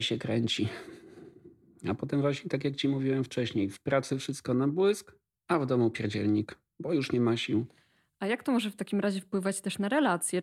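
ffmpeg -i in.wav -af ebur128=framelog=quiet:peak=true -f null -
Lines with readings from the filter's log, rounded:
Integrated loudness:
  I:         -30.1 LUFS
  Threshold: -40.8 LUFS
Loudness range:
  LRA:         2.5 LU
  Threshold: -50.7 LUFS
  LRA low:   -32.2 LUFS
  LRA high:  -29.8 LUFS
True peak:
  Peak:      -13.1 dBFS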